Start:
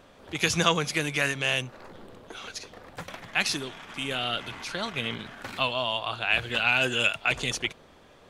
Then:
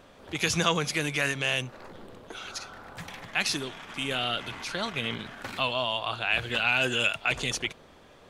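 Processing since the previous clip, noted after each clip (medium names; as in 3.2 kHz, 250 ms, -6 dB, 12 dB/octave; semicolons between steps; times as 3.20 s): in parallel at -2 dB: peak limiter -18.5 dBFS, peak gain reduction 11 dB; on the sum: spectral replace 2.42–3.19 s, 210–1600 Hz both; trim -4.5 dB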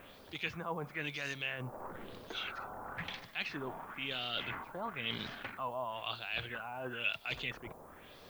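reverse; compression 5:1, threshold -36 dBFS, peak gain reduction 15.5 dB; reverse; LFO low-pass sine 1 Hz 860–5100 Hz; added noise violet -65 dBFS; trim -2.5 dB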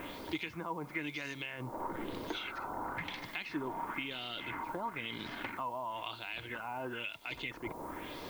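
compression 10:1, threshold -47 dBFS, peak gain reduction 18 dB; small resonant body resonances 310/940/2100 Hz, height 11 dB, ringing for 45 ms; bit crusher 12-bit; trim +8.5 dB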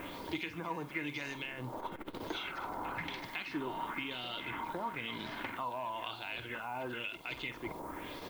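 doubling 48 ms -13 dB; reverse echo 504 ms -13.5 dB; transformer saturation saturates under 330 Hz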